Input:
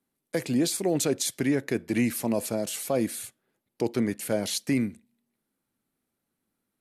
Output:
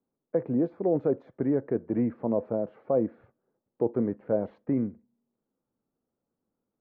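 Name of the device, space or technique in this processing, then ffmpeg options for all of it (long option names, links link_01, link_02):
under water: -af "lowpass=frequency=1200:width=0.5412,lowpass=frequency=1200:width=1.3066,equalizer=frequency=490:width_type=o:width=0.5:gain=6,volume=-2dB"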